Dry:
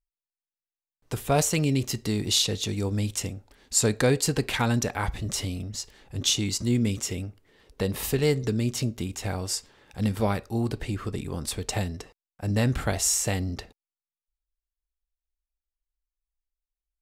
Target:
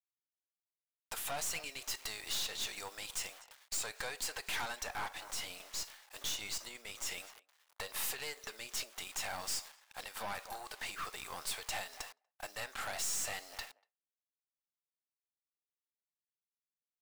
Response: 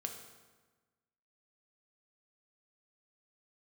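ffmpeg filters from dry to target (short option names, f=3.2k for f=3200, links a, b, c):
-filter_complex "[0:a]acrusher=bits=8:mix=0:aa=0.000001,acontrast=76,asplit=2[a][b];[b]adelay=241,lowpass=f=1.4k:p=1,volume=-20.5dB,asplit=2[c][d];[d]adelay=241,lowpass=f=1.4k:p=1,volume=0.25[e];[a][c][e]amix=inputs=3:normalize=0,acompressor=threshold=-23dB:ratio=6,agate=range=-33dB:threshold=-37dB:ratio=3:detection=peak,highpass=f=760:w=0.5412,highpass=f=760:w=1.3066,aeval=exprs='(tanh(56.2*val(0)+0.6)-tanh(0.6))/56.2':c=same,asplit=3[f][g][h];[f]afade=t=out:st=4.87:d=0.02[i];[g]adynamicequalizer=threshold=0.002:dfrequency=1800:dqfactor=0.7:tfrequency=1800:tqfactor=0.7:attack=5:release=100:ratio=0.375:range=1.5:mode=cutabove:tftype=highshelf,afade=t=in:st=4.87:d=0.02,afade=t=out:st=7.05:d=0.02[j];[h]afade=t=in:st=7.05:d=0.02[k];[i][j][k]amix=inputs=3:normalize=0"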